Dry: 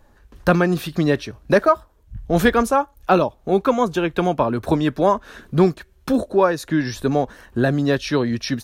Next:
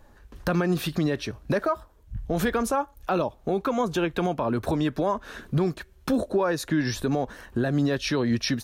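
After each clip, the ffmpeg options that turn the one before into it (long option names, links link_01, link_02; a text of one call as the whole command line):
ffmpeg -i in.wav -af "alimiter=limit=-15.5dB:level=0:latency=1:release=113" out.wav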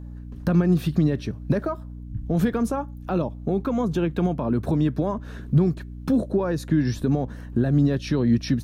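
ffmpeg -i in.wav -af "equalizer=frequency=160:width=0.48:gain=13.5,aeval=exprs='val(0)+0.0355*(sin(2*PI*60*n/s)+sin(2*PI*2*60*n/s)/2+sin(2*PI*3*60*n/s)/3+sin(2*PI*4*60*n/s)/4+sin(2*PI*5*60*n/s)/5)':channel_layout=same,volume=-6.5dB" out.wav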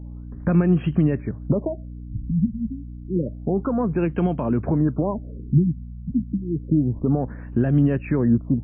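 ffmpeg -i in.wav -af "afftfilt=real='re*lt(b*sr/1024,250*pow(3300/250,0.5+0.5*sin(2*PI*0.29*pts/sr)))':imag='im*lt(b*sr/1024,250*pow(3300/250,0.5+0.5*sin(2*PI*0.29*pts/sr)))':win_size=1024:overlap=0.75,volume=1.5dB" out.wav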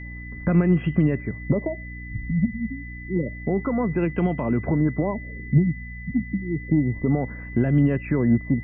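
ffmpeg -i in.wav -af "aeval=exprs='0.422*(cos(1*acos(clip(val(0)/0.422,-1,1)))-cos(1*PI/2))+0.0211*(cos(3*acos(clip(val(0)/0.422,-1,1)))-cos(3*PI/2))':channel_layout=same,aeval=exprs='val(0)+0.0112*sin(2*PI*2000*n/s)':channel_layout=same" out.wav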